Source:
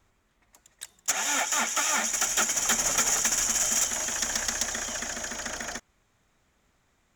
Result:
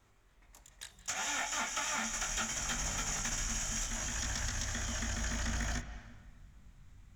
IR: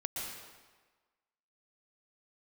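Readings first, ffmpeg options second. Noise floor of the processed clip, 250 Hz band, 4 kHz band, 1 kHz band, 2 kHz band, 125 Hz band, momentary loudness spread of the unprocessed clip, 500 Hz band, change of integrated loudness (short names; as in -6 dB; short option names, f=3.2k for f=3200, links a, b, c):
-65 dBFS, -3.0 dB, -8.5 dB, -8.0 dB, -7.5 dB, +8.5 dB, 11 LU, -9.5 dB, -10.0 dB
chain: -filter_complex "[0:a]flanger=delay=20:depth=2.4:speed=0.67,asubboost=boost=10:cutoff=140,asplit=2[a][b];[b]acompressor=threshold=-41dB:ratio=6,volume=-1dB[c];[a][c]amix=inputs=2:normalize=0,alimiter=limit=-21.5dB:level=0:latency=1:release=238,acrossover=split=6900[d][e];[e]acompressor=threshold=-47dB:ratio=4:attack=1:release=60[f];[d][f]amix=inputs=2:normalize=0,asplit=2[g][h];[1:a]atrim=start_sample=2205,lowpass=3.8k,adelay=54[i];[h][i]afir=irnorm=-1:irlink=0,volume=-11.5dB[j];[g][j]amix=inputs=2:normalize=0,volume=-3dB"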